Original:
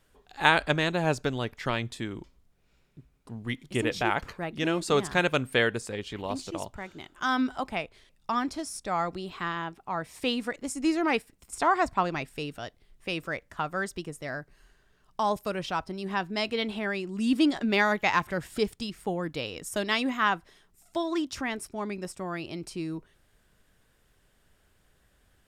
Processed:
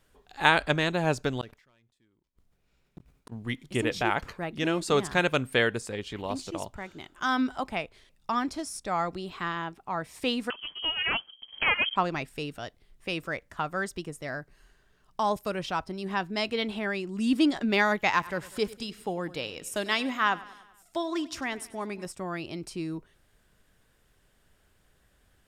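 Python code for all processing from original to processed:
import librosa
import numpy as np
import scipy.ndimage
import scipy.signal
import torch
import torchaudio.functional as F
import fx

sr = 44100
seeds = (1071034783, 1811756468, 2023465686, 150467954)

y = fx.chain(x, sr, fx.leveller(passes=2),
    fx.gate_flip(shuts_db=-34.0, range_db=-42),
    fx.sustainer(db_per_s=120.0), at=(1.41, 3.32))
y = fx.chain(y, sr, fx.self_delay(depth_ms=0.19),
    fx.low_shelf_res(hz=200.0, db=9.5, q=3.0),
    fx.freq_invert(carrier_hz=3200), at=(10.5, 11.96))
y = fx.chain(y, sr, fx.low_shelf(hz=250.0, db=-5.5),
    fx.echo_feedback(ms=97, feedback_pct=57, wet_db=-19), at=(18.1, 22.06))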